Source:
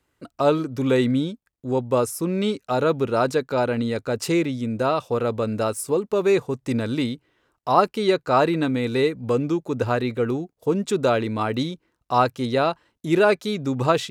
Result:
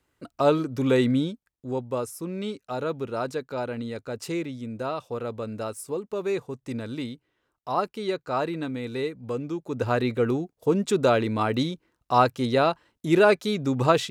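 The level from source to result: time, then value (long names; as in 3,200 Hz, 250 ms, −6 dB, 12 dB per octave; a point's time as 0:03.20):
0:01.25 −1.5 dB
0:01.99 −8.5 dB
0:09.50 −8.5 dB
0:10.01 −0.5 dB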